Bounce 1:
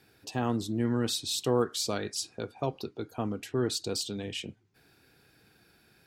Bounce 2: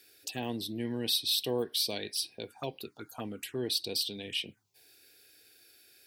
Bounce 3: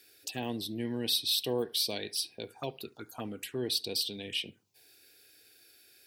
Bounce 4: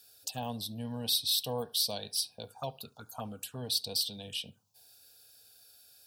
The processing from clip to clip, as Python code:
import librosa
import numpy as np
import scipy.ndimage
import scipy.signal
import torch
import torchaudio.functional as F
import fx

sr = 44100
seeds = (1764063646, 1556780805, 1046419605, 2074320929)

y1 = fx.tilt_eq(x, sr, slope=3.0)
y1 = fx.env_phaser(y1, sr, low_hz=150.0, high_hz=1300.0, full_db=-32.5)
y2 = fx.echo_filtered(y1, sr, ms=71, feedback_pct=30, hz=2000.0, wet_db=-21.5)
y3 = fx.fixed_phaser(y2, sr, hz=850.0, stages=4)
y3 = y3 * librosa.db_to_amplitude(3.0)